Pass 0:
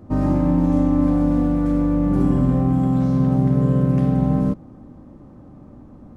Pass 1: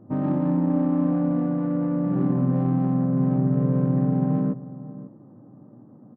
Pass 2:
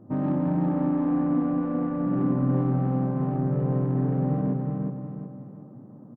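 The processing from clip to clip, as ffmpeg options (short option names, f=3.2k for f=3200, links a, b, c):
-filter_complex "[0:a]asplit=2[a][b];[b]adelay=542.3,volume=-15dB,highshelf=f=4k:g=-12.2[c];[a][c]amix=inputs=2:normalize=0,afftfilt=real='re*between(b*sr/4096,100,2000)':imag='im*between(b*sr/4096,100,2000)':win_size=4096:overlap=0.75,adynamicsmooth=sensitivity=1:basefreq=1.2k,volume=-4dB"
-filter_complex "[0:a]asplit=2[a][b];[b]asoftclip=type=tanh:threshold=-22dB,volume=-5dB[c];[a][c]amix=inputs=2:normalize=0,aecho=1:1:367|734|1101|1468|1835:0.631|0.233|0.0864|0.032|0.0118,volume=-4.5dB"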